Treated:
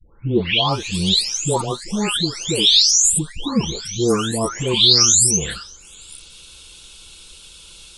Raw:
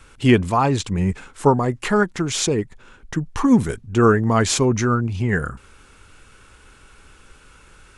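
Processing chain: delay that grows with frequency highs late, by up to 724 ms; resonant high shelf 2.5 kHz +13 dB, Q 3

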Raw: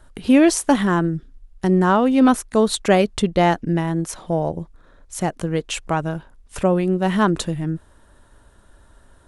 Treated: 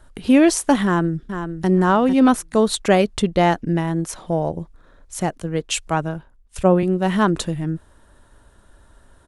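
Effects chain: 0.84–1.68 s: echo throw 450 ms, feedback 20%, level -8.5 dB; 5.38–6.83 s: three bands expanded up and down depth 70%

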